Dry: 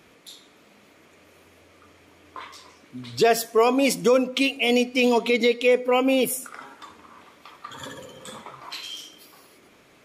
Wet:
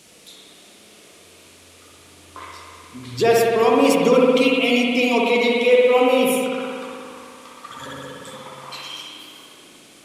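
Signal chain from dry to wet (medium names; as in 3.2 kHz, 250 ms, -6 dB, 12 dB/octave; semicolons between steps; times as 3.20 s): coarse spectral quantiser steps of 15 dB; band noise 2.4–11 kHz -52 dBFS; spring tank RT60 2.3 s, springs 58 ms, chirp 70 ms, DRR -3 dB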